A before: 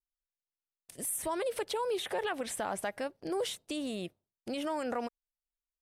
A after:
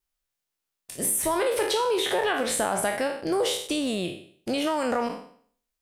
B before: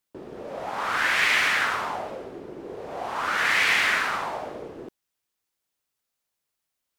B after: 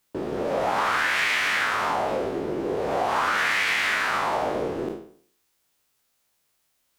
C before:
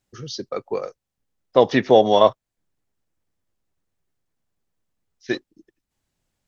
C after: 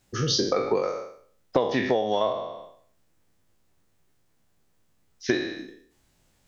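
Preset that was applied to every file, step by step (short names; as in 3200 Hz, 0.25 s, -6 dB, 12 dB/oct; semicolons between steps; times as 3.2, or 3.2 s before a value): spectral trails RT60 0.54 s; compressor 16:1, threshold -29 dBFS; gain +9 dB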